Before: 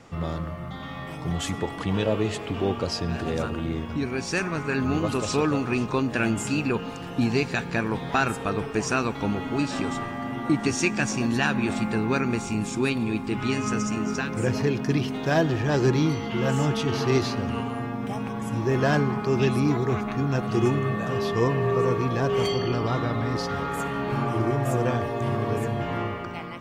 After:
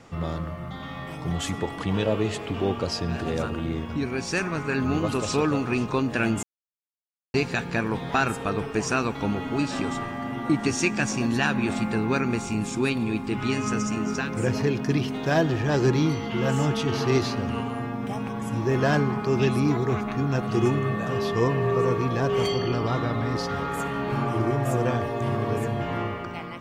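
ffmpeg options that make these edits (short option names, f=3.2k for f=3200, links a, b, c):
-filter_complex "[0:a]asplit=3[a][b][c];[a]atrim=end=6.43,asetpts=PTS-STARTPTS,afade=t=out:st=6.426:d=0.004:c=hsin[d];[b]atrim=start=6.43:end=7.34,asetpts=PTS-STARTPTS,volume=0[e];[c]atrim=start=7.34,asetpts=PTS-STARTPTS,afade=t=in:d=0.004:c=hsin[f];[d][e][f]concat=n=3:v=0:a=1"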